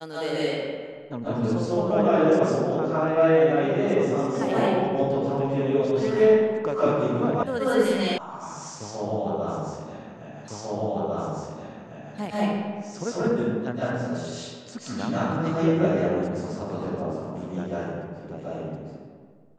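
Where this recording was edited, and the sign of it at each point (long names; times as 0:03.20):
0:07.43: cut off before it has died away
0:08.18: cut off before it has died away
0:10.48: the same again, the last 1.7 s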